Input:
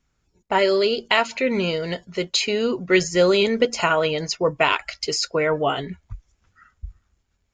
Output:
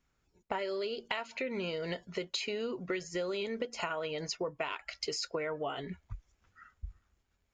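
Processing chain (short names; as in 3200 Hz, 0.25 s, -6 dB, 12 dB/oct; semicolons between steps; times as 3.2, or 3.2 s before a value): tone controls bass -4 dB, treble -4 dB; compressor 10:1, threshold -29 dBFS, peak gain reduction 17 dB; gain -3.5 dB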